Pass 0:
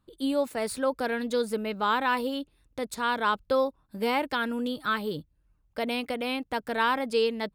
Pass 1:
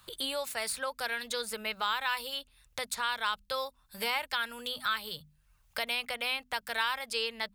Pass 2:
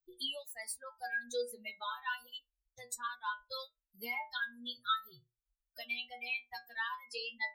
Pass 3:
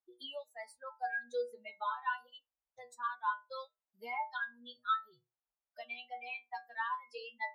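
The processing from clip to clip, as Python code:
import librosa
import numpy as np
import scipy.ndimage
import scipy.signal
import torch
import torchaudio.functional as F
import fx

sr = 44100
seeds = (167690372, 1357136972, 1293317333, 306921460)

y1 = fx.tone_stack(x, sr, knobs='10-0-10')
y1 = fx.hum_notches(y1, sr, base_hz=50, count=5)
y1 = fx.band_squash(y1, sr, depth_pct=70)
y1 = F.gain(torch.from_numpy(y1), 4.0).numpy()
y2 = fx.bin_expand(y1, sr, power=3.0)
y2 = fx.stiff_resonator(y2, sr, f0_hz=120.0, decay_s=0.28, stiffness=0.002)
y2 = F.gain(torch.from_numpy(y2), 9.0).numpy()
y3 = fx.bandpass_q(y2, sr, hz=830.0, q=1.5)
y3 = F.gain(torch.from_numpy(y3), 6.5).numpy()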